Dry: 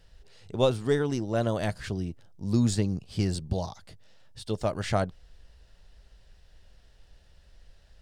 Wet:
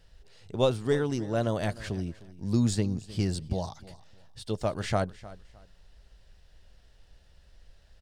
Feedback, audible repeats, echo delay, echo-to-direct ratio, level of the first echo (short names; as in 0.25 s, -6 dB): 25%, 2, 0.307 s, -18.0 dB, -18.5 dB